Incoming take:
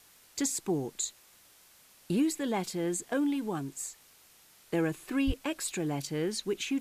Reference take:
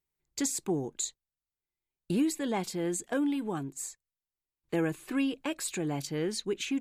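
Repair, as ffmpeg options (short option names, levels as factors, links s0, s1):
-filter_complex "[0:a]asplit=3[s0][s1][s2];[s0]afade=t=out:st=5.26:d=0.02[s3];[s1]highpass=f=140:w=0.5412,highpass=f=140:w=1.3066,afade=t=in:st=5.26:d=0.02,afade=t=out:st=5.38:d=0.02[s4];[s2]afade=t=in:st=5.38:d=0.02[s5];[s3][s4][s5]amix=inputs=3:normalize=0,afftdn=nr=30:nf=-60"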